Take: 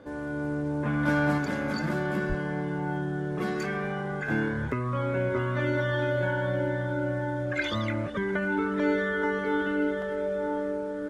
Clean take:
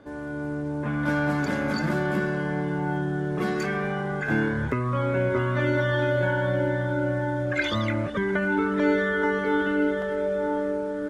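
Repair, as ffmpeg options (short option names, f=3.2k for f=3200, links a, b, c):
-filter_complex "[0:a]bandreject=f=500:w=30,asplit=3[a][b][c];[a]afade=t=out:st=2.28:d=0.02[d];[b]highpass=f=140:w=0.5412,highpass=f=140:w=1.3066,afade=t=in:st=2.28:d=0.02,afade=t=out:st=2.4:d=0.02[e];[c]afade=t=in:st=2.4:d=0.02[f];[d][e][f]amix=inputs=3:normalize=0,asetnsamples=n=441:p=0,asendcmd='1.38 volume volume 3.5dB',volume=0dB"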